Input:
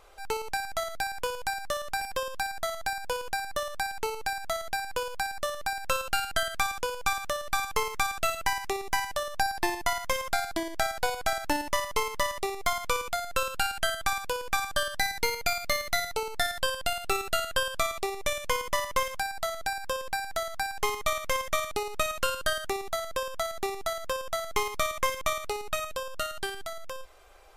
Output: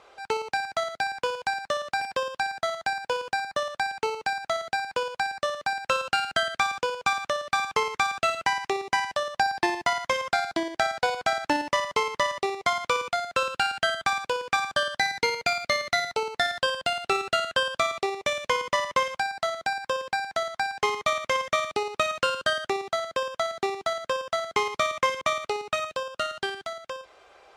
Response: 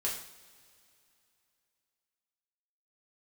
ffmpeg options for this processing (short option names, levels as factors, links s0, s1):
-af "highpass=140,lowpass=5200,volume=1.58"